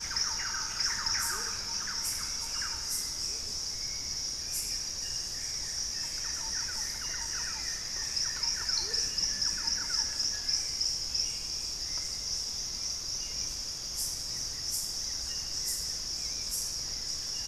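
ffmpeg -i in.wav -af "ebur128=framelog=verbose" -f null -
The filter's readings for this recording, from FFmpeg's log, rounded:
Integrated loudness:
  I:         -31.0 LUFS
  Threshold: -41.0 LUFS
Loudness range:
  LRA:         3.6 LU
  Threshold: -51.0 LUFS
  LRA low:   -32.4 LUFS
  LRA high:  -28.8 LUFS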